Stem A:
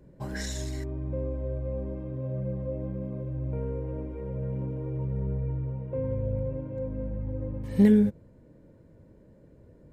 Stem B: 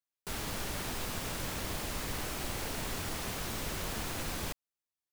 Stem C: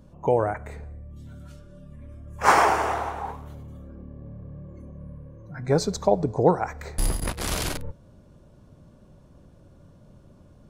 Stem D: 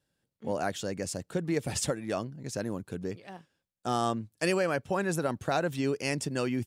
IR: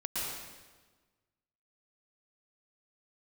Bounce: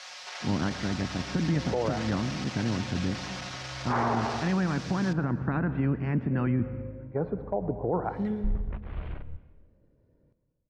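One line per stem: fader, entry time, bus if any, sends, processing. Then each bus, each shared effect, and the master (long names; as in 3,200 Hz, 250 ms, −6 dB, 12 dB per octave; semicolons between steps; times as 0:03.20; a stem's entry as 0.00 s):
−13.5 dB, 0.40 s, send −13 dB, low-pass filter 5,700 Hz 24 dB per octave
+1.0 dB, 0.00 s, send −23 dB, sign of each sample alone; Chebyshev band-pass filter 610–5,600 Hz, order 3; comb filter 5.5 ms, depth 67%
−12.5 dB, 1.45 s, send −20.5 dB, Bessel low-pass filter 1,500 Hz, order 8; multiband upward and downward expander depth 100%
−3.0 dB, 0.00 s, send −16.5 dB, ceiling on every frequency bin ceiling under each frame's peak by 15 dB; low-pass filter 1,800 Hz 24 dB per octave; low shelf with overshoot 330 Hz +11 dB, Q 1.5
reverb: on, RT60 1.3 s, pre-delay 106 ms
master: brickwall limiter −18 dBFS, peak gain reduction 10 dB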